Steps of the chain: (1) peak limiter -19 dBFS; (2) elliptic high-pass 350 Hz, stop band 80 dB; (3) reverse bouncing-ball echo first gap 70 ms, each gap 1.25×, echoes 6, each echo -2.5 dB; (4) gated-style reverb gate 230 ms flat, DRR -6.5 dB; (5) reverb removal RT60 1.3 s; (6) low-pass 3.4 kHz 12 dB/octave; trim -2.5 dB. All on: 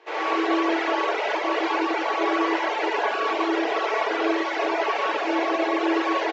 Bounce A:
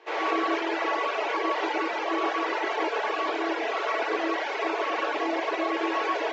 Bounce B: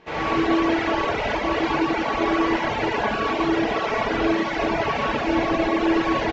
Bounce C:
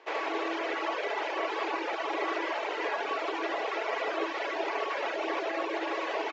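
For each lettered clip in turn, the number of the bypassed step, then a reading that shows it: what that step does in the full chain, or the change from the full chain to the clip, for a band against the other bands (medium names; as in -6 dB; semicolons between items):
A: 3, loudness change -3.5 LU; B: 2, loudness change +1.5 LU; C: 4, loudness change -8.0 LU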